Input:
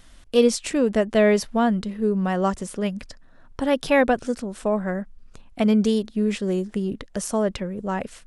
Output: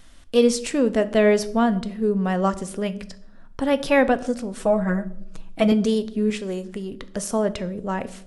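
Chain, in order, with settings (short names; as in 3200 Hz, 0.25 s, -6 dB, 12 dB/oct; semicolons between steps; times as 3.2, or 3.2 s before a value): 4.53–5.72 comb 6.2 ms, depth 97%; 6.3–7.03 bell 150 Hz -7 dB 2.6 oct; on a send: reverb RT60 0.75 s, pre-delay 4 ms, DRR 12.5 dB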